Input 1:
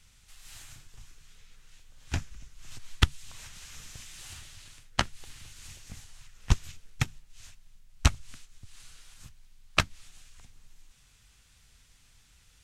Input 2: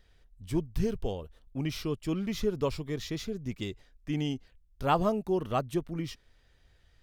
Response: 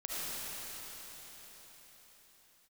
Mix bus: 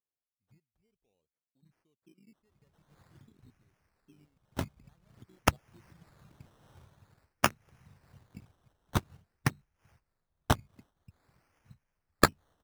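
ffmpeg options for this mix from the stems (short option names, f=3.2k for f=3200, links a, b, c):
-filter_complex "[0:a]aemphasis=mode=reproduction:type=cd,adelay=2450,volume=3dB[a];[1:a]acompressor=threshold=-37dB:ratio=6,volume=-18dB[b];[a][b]amix=inputs=2:normalize=0,afwtdn=0.00708,highpass=150,acrusher=samples=15:mix=1:aa=0.000001:lfo=1:lforange=9:lforate=0.49"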